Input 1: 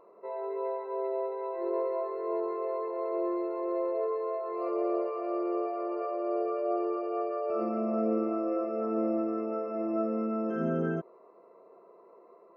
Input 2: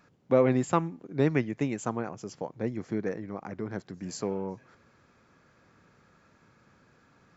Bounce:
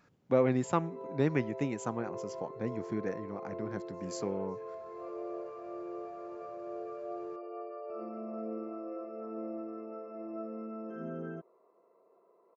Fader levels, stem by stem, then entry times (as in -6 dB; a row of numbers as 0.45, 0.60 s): -10.5, -4.0 dB; 0.40, 0.00 s